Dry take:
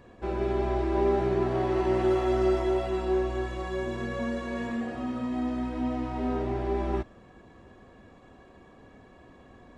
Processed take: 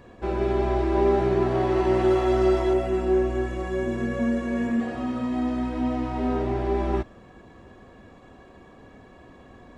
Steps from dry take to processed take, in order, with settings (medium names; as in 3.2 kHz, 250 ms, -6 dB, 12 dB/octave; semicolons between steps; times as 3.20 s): 2.73–4.80 s: fifteen-band graphic EQ 250 Hz +5 dB, 1 kHz -5 dB, 4 kHz -9 dB; trim +4 dB